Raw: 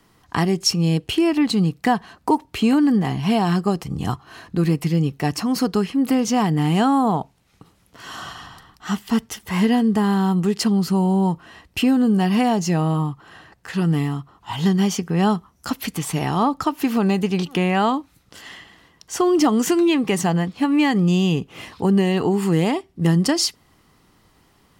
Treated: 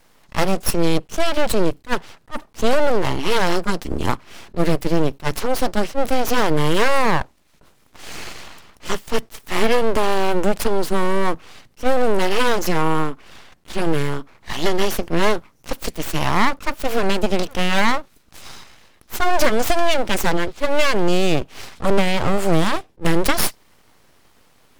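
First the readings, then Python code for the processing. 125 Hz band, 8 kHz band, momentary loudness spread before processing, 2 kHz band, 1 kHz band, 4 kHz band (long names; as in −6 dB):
−5.5 dB, +0.5 dB, 11 LU, +6.0 dB, +2.0 dB, +1.5 dB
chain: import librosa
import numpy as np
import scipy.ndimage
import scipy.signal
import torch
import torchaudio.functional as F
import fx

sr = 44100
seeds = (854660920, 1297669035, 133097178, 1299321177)

y = fx.cheby_harmonics(x, sr, harmonics=(6,), levels_db=(-18,), full_scale_db=-5.5)
y = np.abs(y)
y = fx.attack_slew(y, sr, db_per_s=420.0)
y = y * librosa.db_to_amplitude(4.0)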